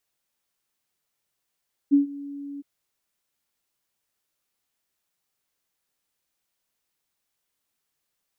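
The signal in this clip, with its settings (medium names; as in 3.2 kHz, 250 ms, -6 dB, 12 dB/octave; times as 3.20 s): ADSR sine 283 Hz, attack 27 ms, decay 124 ms, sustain -21 dB, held 0.69 s, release 23 ms -12 dBFS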